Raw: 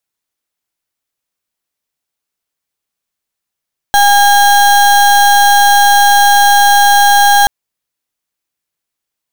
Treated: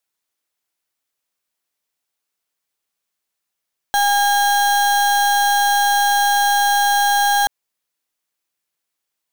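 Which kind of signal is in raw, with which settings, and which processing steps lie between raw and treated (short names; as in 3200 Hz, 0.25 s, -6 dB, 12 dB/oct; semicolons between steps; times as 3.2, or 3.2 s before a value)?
pulse 812 Hz, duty 33% -7 dBFS 3.53 s
low shelf 200 Hz -8.5 dB; limiter -11.5 dBFS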